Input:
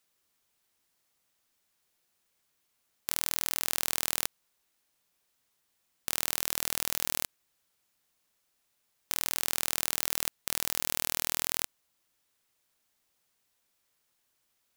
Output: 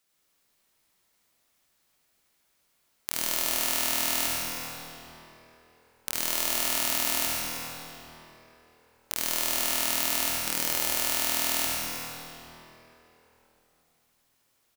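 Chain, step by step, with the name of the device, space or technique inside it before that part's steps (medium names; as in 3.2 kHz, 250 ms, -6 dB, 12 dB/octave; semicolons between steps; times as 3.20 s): cave (delay 315 ms -11.5 dB; reverberation RT60 3.5 s, pre-delay 52 ms, DRR -5 dB)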